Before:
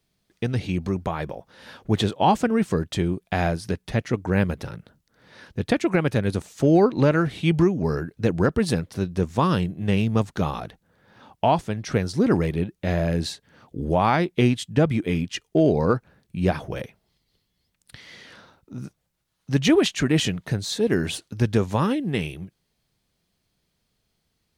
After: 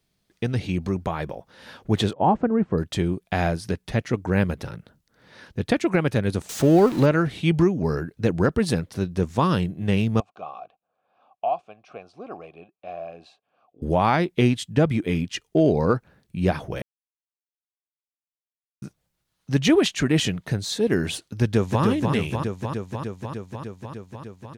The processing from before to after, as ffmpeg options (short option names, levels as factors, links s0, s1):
-filter_complex "[0:a]asettb=1/sr,asplit=3[s0][s1][s2];[s0]atrim=end=2.134[s3];[s1]atrim=start=2.13:end=2.78,asetpts=PTS-STARTPTS,afade=t=in:d=0.004:c=qsin,afade=t=out:st=0.646:d=0.004:c=qsin,lowpass=1100[s4];[s2]atrim=start=2.776[s5];[s3][s4]acrossfade=d=0.004:c1=hsin:c2=qsin[s6];[s6][s5]acrossfade=d=0.004:c1=qsin:c2=hsin,asettb=1/sr,asplit=3[s7][s8][s9];[s7]atrim=end=6.494[s10];[s8]atrim=start=6.49:end=7.06,asetpts=PTS-STARTPTS,afade=t=in:d=0.004:c=qsin,afade=t=out:st=0.566:d=0.004:c=qsin,aeval=exprs='val(0)+0.5*0.0355*sgn(val(0))':c=same[s11];[s9]atrim=start=7.056[s12];[s10][s11]acrossfade=d=0.004:c1=hsin:c2=qsin[s13];[s13][s12]acrossfade=d=0.004:c1=qsin:c2=hsin,asettb=1/sr,asplit=3[s14][s15][s16];[s14]atrim=end=10.204[s17];[s15]atrim=start=10.2:end=13.82,asetpts=PTS-STARTPTS,afade=t=in:d=0.004:c=qsin,afade=t=out:st=3.616:d=0.004:c=qsin,asplit=3[s18][s19][s20];[s18]bandpass=f=730:t=q:w=8,volume=1[s21];[s19]bandpass=f=1090:t=q:w=8,volume=0.501[s22];[s20]bandpass=f=2440:t=q:w=8,volume=0.355[s23];[s21][s22][s23]amix=inputs=3:normalize=0[s24];[s16]atrim=start=13.816[s25];[s17][s24]acrossfade=d=0.004:c1=hsin:c2=qsin[s26];[s26][s25]acrossfade=d=0.004:c1=qsin:c2=hsin,asplit=2[s27][s28];[s28]afade=t=in:st=21.42:d=0.01,afade=t=out:st=21.83:d=0.01,aecho=0:1:300|600|900|1200|1500|1800|2100|2400|2700|3000|3300|3600:0.630957|0.504766|0.403813|0.32305|0.25844|0.206752|0.165402|0.132321|0.105857|0.0846857|0.0677485|0.0541988[s29];[s27][s29]amix=inputs=2:normalize=0,asplit=3[s30][s31][s32];[s30]atrim=end=16.82,asetpts=PTS-STARTPTS,afade=t=out:st=16.816:d=0.004:c=hsin[s33];[s31]atrim=start=16.82:end=18.82,asetpts=PTS-STARTPTS,volume=0[s34];[s32]atrim=start=18.82,asetpts=PTS-STARTPTS,afade=t=in:d=0.004:c=hsin[s35];[s33][s34][s35]concat=n=3:v=0:a=1"